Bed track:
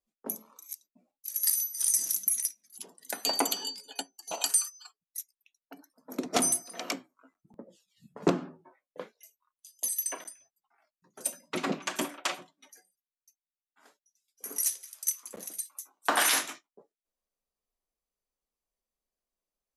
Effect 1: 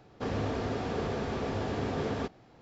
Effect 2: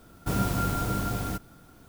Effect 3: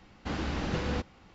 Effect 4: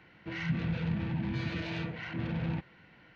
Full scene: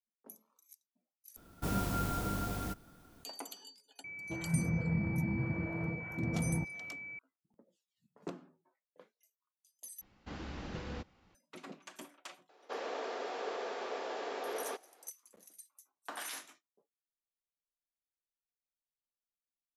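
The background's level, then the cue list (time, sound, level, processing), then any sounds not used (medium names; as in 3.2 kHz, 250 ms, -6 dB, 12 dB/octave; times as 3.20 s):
bed track -18 dB
1.36 s: replace with 2 -6.5 dB + peaking EQ 120 Hz -7 dB 0.21 oct
4.04 s: add 4 -0.5 dB + class-D stage that switches slowly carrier 2.3 kHz
10.01 s: replace with 3 -11 dB
12.49 s: add 1 -3 dB + high-pass 420 Hz 24 dB/octave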